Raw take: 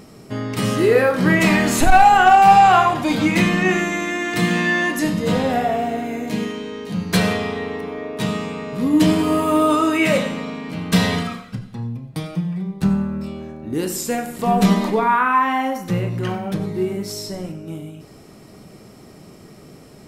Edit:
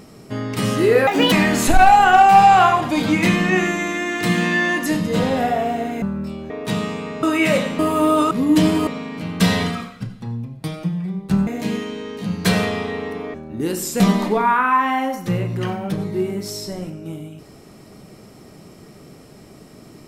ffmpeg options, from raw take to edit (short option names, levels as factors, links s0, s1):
-filter_complex "[0:a]asplit=12[s0][s1][s2][s3][s4][s5][s6][s7][s8][s9][s10][s11];[s0]atrim=end=1.074[s12];[s1]atrim=start=1.07:end=1.45,asetpts=PTS-STARTPTS,asetrate=67032,aresample=44100[s13];[s2]atrim=start=1.446:end=6.152[s14];[s3]atrim=start=12.988:end=13.472[s15];[s4]atrim=start=8.018:end=8.752[s16];[s5]atrim=start=9.828:end=10.392[s17];[s6]atrim=start=9.308:end=9.832[s18];[s7]atrim=start=8.748:end=9.312[s19];[s8]atrim=start=10.388:end=12.992[s20];[s9]atrim=start=6.148:end=8.022[s21];[s10]atrim=start=13.468:end=14.132[s22];[s11]atrim=start=14.618[s23];[s12][s13]acrossfade=d=0.004:c1=hsin:c2=hsin[s24];[s24][s14]acrossfade=d=0.004:c1=hsin:c2=hsin[s25];[s25][s15]acrossfade=d=0.004:c1=hsin:c2=hsin[s26];[s26][s16]acrossfade=d=0.004:c1=hsin:c2=hsin[s27];[s27][s17]acrossfade=d=0.004:c1=hsin:c2=hsin[s28];[s28][s18]acrossfade=d=0.004:c1=hsin:c2=hsin[s29];[s29][s19]acrossfade=d=0.004:c1=hsin:c2=hsin[s30];[s30][s20]acrossfade=d=0.004:c1=hsin:c2=hsin[s31];[s31][s21]acrossfade=d=0.004:c1=hsin:c2=hsin[s32];[s32][s22]acrossfade=d=0.004:c1=hsin:c2=hsin[s33];[s33][s23]acrossfade=d=0.004:c1=hsin:c2=hsin"